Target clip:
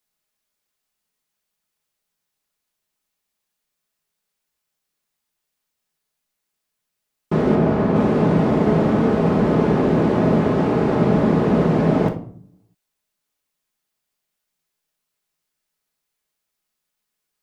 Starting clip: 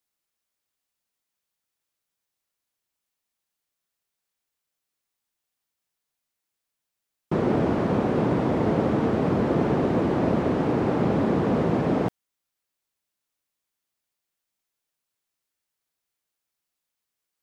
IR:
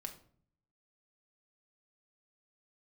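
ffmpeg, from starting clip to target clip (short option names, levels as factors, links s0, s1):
-filter_complex "[0:a]asettb=1/sr,asplit=3[s0][s1][s2];[s0]atrim=end=7.554[s3];[s1]atrim=start=7.55:end=7.96,asetpts=PTS-STARTPTS,afade=t=in:d=0.004:c=qsin,afade=t=out:st=0.406:d=0.004:c=qsin,highshelf=f=3600:g=-8[s4];[s2]atrim=start=7.956[s5];[s3][s4]acrossfade=d=0.004:c1=hsin:c2=qsin[s6];[s6][s5]acrossfade=d=0.004:c1=qsin:c2=hsin[s7];[1:a]atrim=start_sample=2205[s8];[s7][s8]afir=irnorm=-1:irlink=0,volume=2.51"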